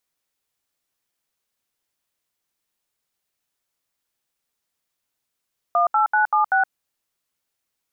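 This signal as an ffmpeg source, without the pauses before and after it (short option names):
-f lavfi -i "aevalsrc='0.133*clip(min(mod(t,0.192),0.119-mod(t,0.192))/0.002,0,1)*(eq(floor(t/0.192),0)*(sin(2*PI*697*mod(t,0.192))+sin(2*PI*1209*mod(t,0.192)))+eq(floor(t/0.192),1)*(sin(2*PI*852*mod(t,0.192))+sin(2*PI*1336*mod(t,0.192)))+eq(floor(t/0.192),2)*(sin(2*PI*852*mod(t,0.192))+sin(2*PI*1477*mod(t,0.192)))+eq(floor(t/0.192),3)*(sin(2*PI*852*mod(t,0.192))+sin(2*PI*1209*mod(t,0.192)))+eq(floor(t/0.192),4)*(sin(2*PI*770*mod(t,0.192))+sin(2*PI*1477*mod(t,0.192))))':d=0.96:s=44100"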